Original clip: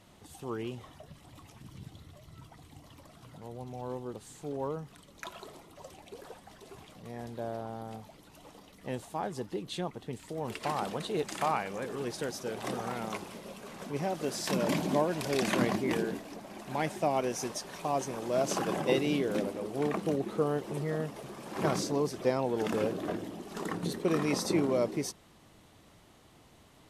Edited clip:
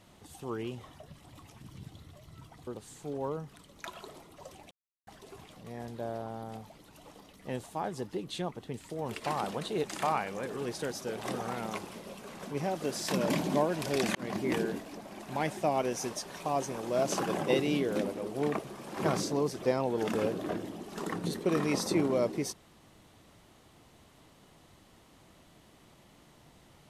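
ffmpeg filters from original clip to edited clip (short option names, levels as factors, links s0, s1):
-filter_complex "[0:a]asplit=6[s0][s1][s2][s3][s4][s5];[s0]atrim=end=2.672[s6];[s1]atrim=start=4.058:end=6.1,asetpts=PTS-STARTPTS,afade=t=out:st=2.038:d=0.004:c=hsin[s7];[s2]atrim=start=6.1:end=6.46,asetpts=PTS-STARTPTS,volume=0[s8];[s3]atrim=start=6.46:end=15.54,asetpts=PTS-STARTPTS,afade=t=in:d=0.004:c=hsin,afade=t=out:st=9.076:d=0.004:c=hsin[s9];[s4]atrim=start=15.54:end=19.982,asetpts=PTS-STARTPTS,afade=t=in:d=0.31[s10];[s5]atrim=start=21.178[s11];[s7][s8][s9][s10]concat=n=4:v=0:a=1[s12];[s6][s12]acrossfade=d=0.004:c1=hsin:c2=hsin[s13];[s13][s11]acrossfade=d=0.004:c1=hsin:c2=hsin"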